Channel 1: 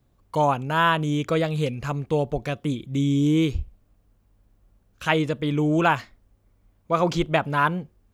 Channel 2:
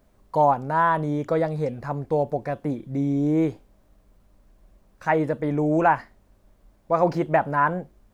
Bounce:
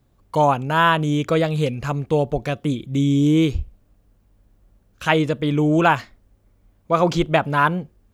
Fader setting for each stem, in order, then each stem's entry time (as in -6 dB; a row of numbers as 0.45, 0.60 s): +3.0, -15.5 dB; 0.00, 0.00 s